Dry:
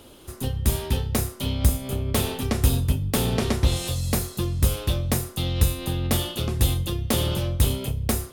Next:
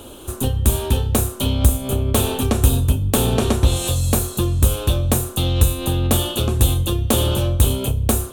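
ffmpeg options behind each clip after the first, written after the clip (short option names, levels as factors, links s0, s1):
-filter_complex "[0:a]equalizer=f=160:t=o:w=0.33:g=-9,equalizer=f=2000:t=o:w=0.33:g=-12,equalizer=f=5000:t=o:w=0.33:g=-11,equalizer=f=8000:t=o:w=0.33:g=3,asplit=2[s0][s1];[s1]acompressor=threshold=0.0355:ratio=6,volume=1.33[s2];[s0][s2]amix=inputs=2:normalize=0,volume=1.41"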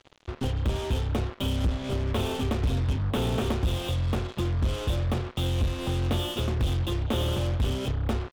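-af "aresample=8000,asoftclip=type=tanh:threshold=0.2,aresample=44100,acrusher=bits=4:mix=0:aa=0.5,volume=0.501"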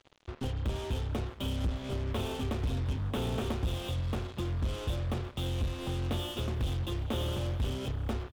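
-af "aecho=1:1:355|710|1065|1420:0.1|0.056|0.0314|0.0176,volume=0.501"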